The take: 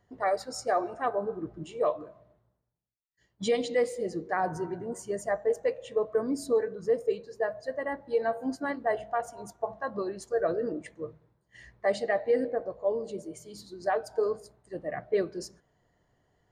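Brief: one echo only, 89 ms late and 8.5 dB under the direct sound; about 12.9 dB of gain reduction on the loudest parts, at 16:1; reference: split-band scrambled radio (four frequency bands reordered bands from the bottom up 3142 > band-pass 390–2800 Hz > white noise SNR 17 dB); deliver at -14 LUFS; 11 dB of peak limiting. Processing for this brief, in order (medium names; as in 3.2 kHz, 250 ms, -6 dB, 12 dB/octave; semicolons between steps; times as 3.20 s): compression 16:1, threshold -34 dBFS; peak limiter -33.5 dBFS; delay 89 ms -8.5 dB; four frequency bands reordered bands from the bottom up 3142; band-pass 390–2800 Hz; white noise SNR 17 dB; trim +27 dB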